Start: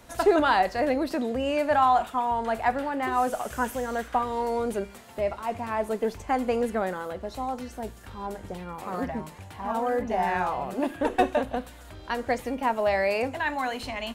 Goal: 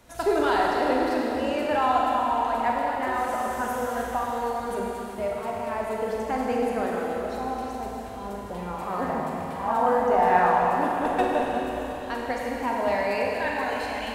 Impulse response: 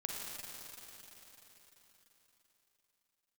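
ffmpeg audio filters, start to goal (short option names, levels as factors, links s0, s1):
-filter_complex "[0:a]asettb=1/sr,asplit=3[s0][s1][s2];[s0]atrim=end=8.464[s3];[s1]atrim=start=8.46:end=10.69,asetpts=PTS-STARTPTS,afade=t=in:d=0.004:c=qsin,afade=t=out:st=2.226:d=0.004:c=qsin,equalizer=f=910:w=0.71:g=8[s4];[s2]atrim=start=10.686[s5];[s3][s4]acrossfade=d=0.004:c1=hsin:c2=qsin[s6];[s6][s5]acrossfade=d=0.004:c1=qsin:c2=hsin[s7];[1:a]atrim=start_sample=2205,asetrate=48510,aresample=44100[s8];[s7][s8]afir=irnorm=-1:irlink=0"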